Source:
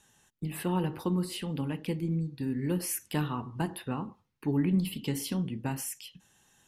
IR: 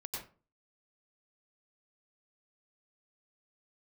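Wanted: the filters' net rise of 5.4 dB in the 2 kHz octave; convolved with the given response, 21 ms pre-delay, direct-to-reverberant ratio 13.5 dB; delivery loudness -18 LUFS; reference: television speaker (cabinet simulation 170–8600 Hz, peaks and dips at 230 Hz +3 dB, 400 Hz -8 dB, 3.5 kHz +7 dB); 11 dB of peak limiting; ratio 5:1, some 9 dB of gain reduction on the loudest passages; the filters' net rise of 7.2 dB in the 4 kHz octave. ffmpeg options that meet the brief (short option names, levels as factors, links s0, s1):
-filter_complex "[0:a]equalizer=f=2000:t=o:g=5.5,equalizer=f=4000:t=o:g=3.5,acompressor=threshold=0.0251:ratio=5,alimiter=level_in=2.11:limit=0.0631:level=0:latency=1,volume=0.473,asplit=2[s0][s1];[1:a]atrim=start_sample=2205,adelay=21[s2];[s1][s2]afir=irnorm=-1:irlink=0,volume=0.224[s3];[s0][s3]amix=inputs=2:normalize=0,highpass=f=170:w=0.5412,highpass=f=170:w=1.3066,equalizer=f=230:t=q:w=4:g=3,equalizer=f=400:t=q:w=4:g=-8,equalizer=f=3500:t=q:w=4:g=7,lowpass=f=8600:w=0.5412,lowpass=f=8600:w=1.3066,volume=13.3"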